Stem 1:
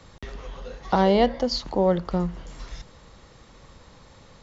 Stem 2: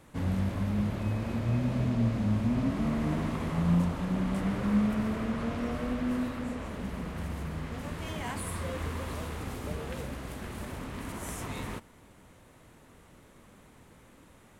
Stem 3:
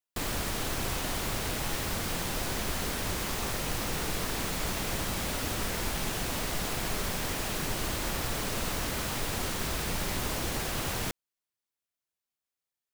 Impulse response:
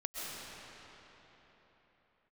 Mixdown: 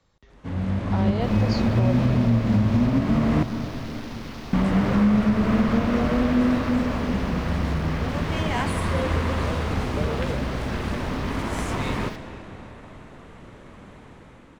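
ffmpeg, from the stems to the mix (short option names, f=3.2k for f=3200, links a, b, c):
-filter_complex "[0:a]volume=-18dB,asplit=2[a][b];[b]volume=-17.5dB[c];[1:a]adynamicsmooth=sensitivity=7.5:basefreq=4.9k,adelay=300,volume=-1dB,asplit=3[d][e][f];[d]atrim=end=3.43,asetpts=PTS-STARTPTS,afade=t=out:st=3.426:d=0.004:c=hsin[g];[e]atrim=start=3.43:end=4.53,asetpts=PTS-STARTPTS,volume=0[h];[f]atrim=start=4.53,asetpts=PTS-STARTPTS,afade=t=in:d=0.004:c=hsin[i];[g][h][i]concat=n=3:v=0:a=1,asplit=2[j][k];[k]volume=-10.5dB[l];[2:a]afwtdn=0.01,adelay=1050,volume=-17dB,asplit=2[m][n];[n]volume=-13dB[o];[3:a]atrim=start_sample=2205[p];[c][l][o]amix=inputs=3:normalize=0[q];[q][p]afir=irnorm=-1:irlink=0[r];[a][j][m][r]amix=inputs=4:normalize=0,dynaudnorm=f=270:g=7:m=10.5dB,alimiter=limit=-11dB:level=0:latency=1:release=255"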